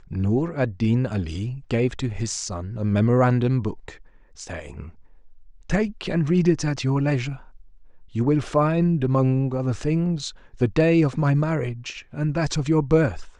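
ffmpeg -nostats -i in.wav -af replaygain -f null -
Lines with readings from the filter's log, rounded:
track_gain = +3.3 dB
track_peak = 0.351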